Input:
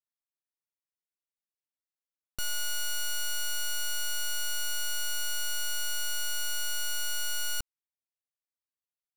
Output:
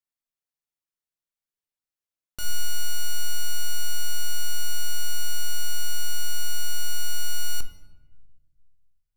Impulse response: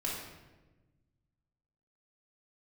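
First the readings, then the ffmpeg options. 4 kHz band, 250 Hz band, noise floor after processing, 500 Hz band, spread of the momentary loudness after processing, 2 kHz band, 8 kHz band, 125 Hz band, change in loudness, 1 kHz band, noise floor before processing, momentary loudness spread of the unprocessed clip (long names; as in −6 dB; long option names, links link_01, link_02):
0.0 dB, +5.5 dB, below −85 dBFS, +1.0 dB, 2 LU, −2.0 dB, +0.5 dB, can't be measured, 0.0 dB, −1.5 dB, below −85 dBFS, 2 LU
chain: -filter_complex "[0:a]asplit=2[link_01][link_02];[1:a]atrim=start_sample=2205,lowshelf=frequency=290:gain=11,adelay=23[link_03];[link_02][link_03]afir=irnorm=-1:irlink=0,volume=-15dB[link_04];[link_01][link_04]amix=inputs=2:normalize=0"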